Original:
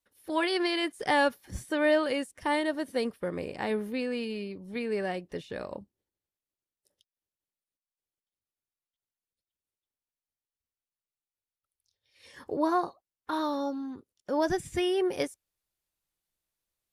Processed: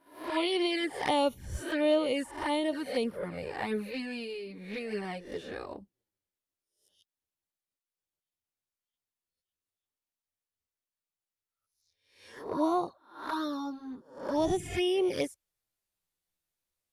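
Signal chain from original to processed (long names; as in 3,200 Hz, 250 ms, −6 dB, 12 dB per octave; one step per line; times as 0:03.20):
peak hold with a rise ahead of every peak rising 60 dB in 0.50 s
flanger swept by the level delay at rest 11.6 ms, full sweep at −23.5 dBFS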